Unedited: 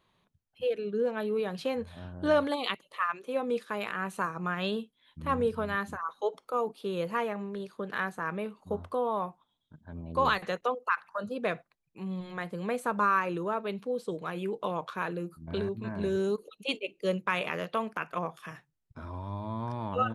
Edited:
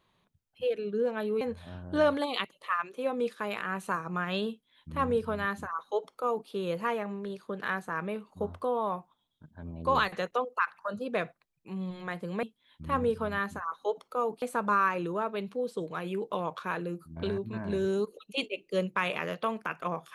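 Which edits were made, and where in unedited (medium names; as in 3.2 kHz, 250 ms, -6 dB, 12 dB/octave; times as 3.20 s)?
1.41–1.71 s: delete
4.80–6.79 s: copy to 12.73 s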